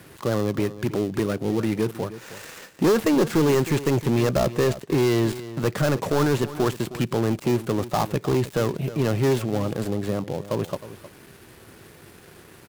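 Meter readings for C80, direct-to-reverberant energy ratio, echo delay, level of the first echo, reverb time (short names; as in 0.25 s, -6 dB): none, none, 0.313 s, -15.0 dB, none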